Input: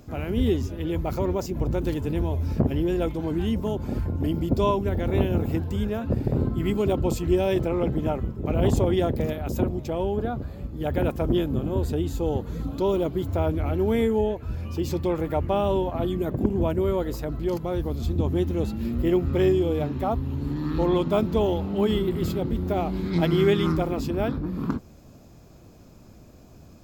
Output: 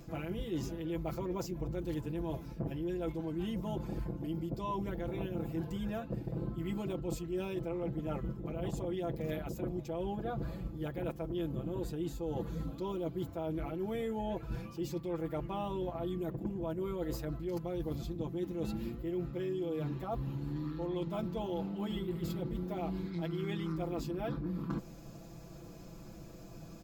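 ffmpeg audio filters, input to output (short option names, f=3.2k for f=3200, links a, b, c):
-af "aecho=1:1:6:0.92,areverse,acompressor=threshold=-31dB:ratio=12,areverse,volume=-2.5dB"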